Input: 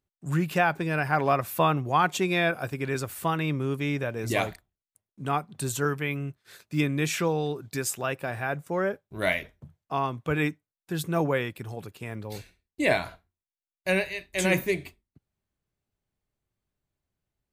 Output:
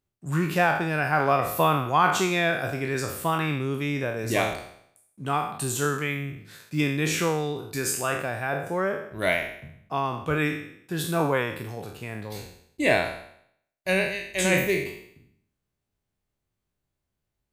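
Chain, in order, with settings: spectral sustain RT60 0.68 s

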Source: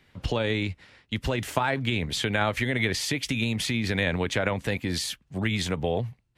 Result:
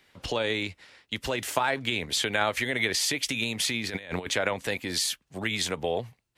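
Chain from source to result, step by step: tone controls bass -11 dB, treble +5 dB; 3.86–4.32 s: compressor with a negative ratio -33 dBFS, ratio -0.5

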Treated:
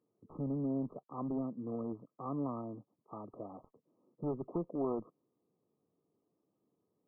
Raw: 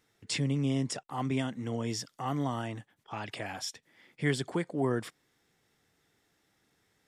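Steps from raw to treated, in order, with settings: local Wiener filter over 25 samples; high-pass 190 Hz 12 dB/octave; peaking EQ 810 Hz -9.5 dB 0.45 oct; one-sided clip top -31.5 dBFS; brick-wall FIR low-pass 1.3 kHz; trim -1.5 dB

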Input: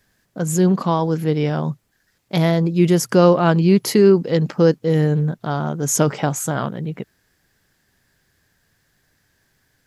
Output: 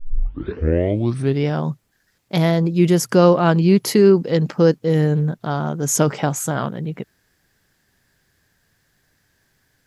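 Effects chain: tape start-up on the opening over 1.46 s

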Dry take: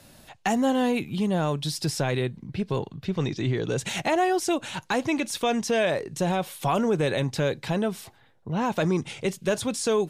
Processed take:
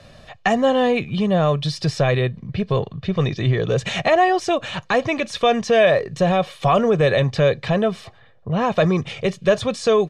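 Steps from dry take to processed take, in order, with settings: low-pass 4 kHz 12 dB/octave; comb 1.7 ms, depth 56%; trim +6.5 dB

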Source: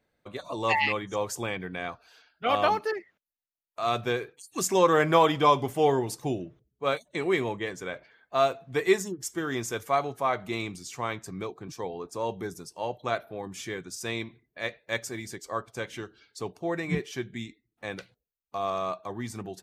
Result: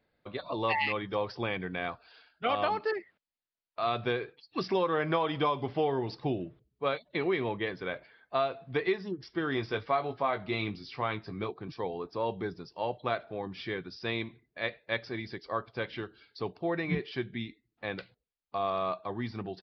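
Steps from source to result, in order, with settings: resampled via 11.025 kHz; compression 6:1, threshold -25 dBFS, peak gain reduction 10 dB; 9.55–11.51 s: doubling 19 ms -8 dB

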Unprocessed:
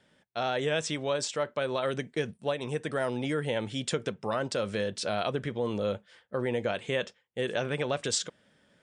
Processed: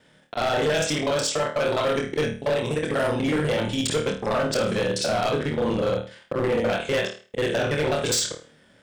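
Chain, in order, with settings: time reversed locally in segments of 41 ms; flutter echo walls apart 4.5 m, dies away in 0.36 s; hard clipper -25.5 dBFS, distortion -12 dB; trim +7 dB

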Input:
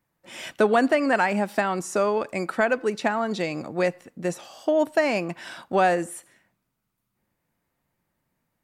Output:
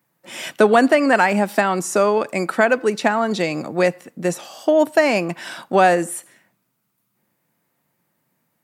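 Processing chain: high-pass 120 Hz 24 dB/octave; treble shelf 10 kHz +7 dB; trim +6 dB

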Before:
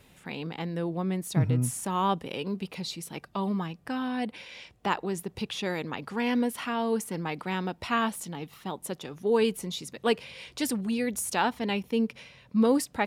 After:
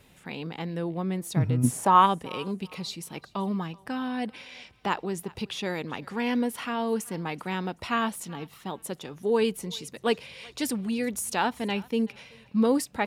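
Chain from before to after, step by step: 1.63–2.05 s: peaking EQ 250 Hz -> 1.9 kHz +15 dB 2 oct; thinning echo 381 ms, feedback 30%, high-pass 640 Hz, level -22 dB

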